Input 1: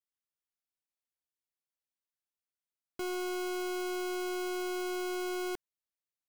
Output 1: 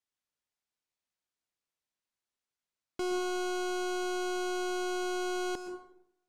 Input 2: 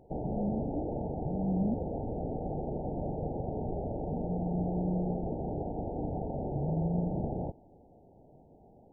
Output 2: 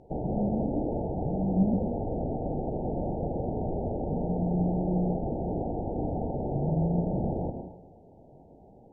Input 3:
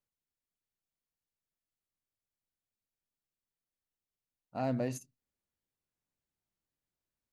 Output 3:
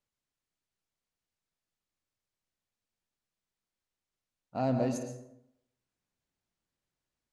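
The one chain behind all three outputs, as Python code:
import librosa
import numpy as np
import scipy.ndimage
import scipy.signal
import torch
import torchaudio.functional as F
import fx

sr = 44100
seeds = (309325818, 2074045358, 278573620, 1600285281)

y = fx.dynamic_eq(x, sr, hz=2000.0, q=1.6, threshold_db=-57.0, ratio=4.0, max_db=-6)
y = scipy.signal.sosfilt(scipy.signal.butter(2, 8000.0, 'lowpass', fs=sr, output='sos'), y)
y = fx.rev_plate(y, sr, seeds[0], rt60_s=0.78, hf_ratio=0.55, predelay_ms=105, drr_db=6.5)
y = F.gain(torch.from_numpy(y), 3.5).numpy()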